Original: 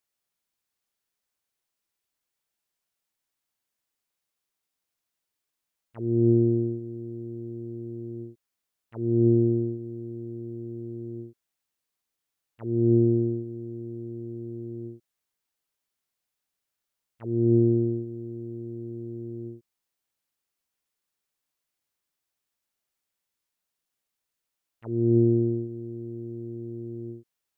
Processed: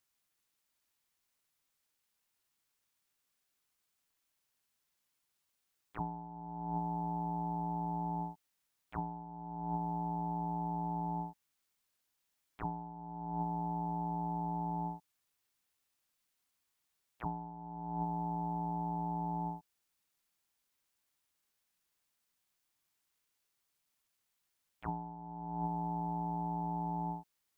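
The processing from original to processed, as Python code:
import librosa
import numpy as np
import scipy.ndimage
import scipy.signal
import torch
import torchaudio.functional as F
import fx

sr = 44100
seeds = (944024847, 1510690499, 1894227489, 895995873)

y = scipy.signal.sosfilt(scipy.signal.butter(2, 260.0, 'highpass', fs=sr, output='sos'), x)
y = fx.over_compress(y, sr, threshold_db=-36.0, ratio=-1.0)
y = y * np.sin(2.0 * np.pi * 520.0 * np.arange(len(y)) / sr)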